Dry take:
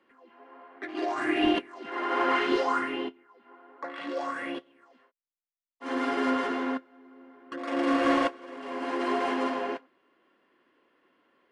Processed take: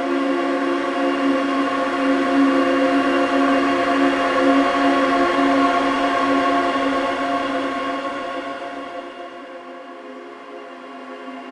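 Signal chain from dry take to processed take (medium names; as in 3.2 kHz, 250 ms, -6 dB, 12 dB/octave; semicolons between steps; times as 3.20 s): Paulstretch 14×, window 0.50 s, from 7.77 s; delay 113 ms -6.5 dB; trim +6 dB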